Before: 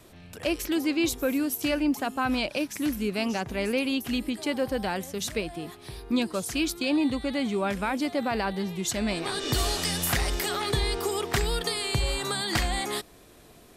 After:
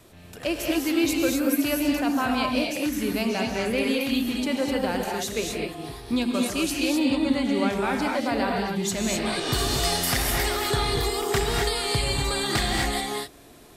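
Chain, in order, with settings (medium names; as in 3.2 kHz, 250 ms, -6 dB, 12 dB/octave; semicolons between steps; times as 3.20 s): gated-style reverb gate 280 ms rising, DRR -0.5 dB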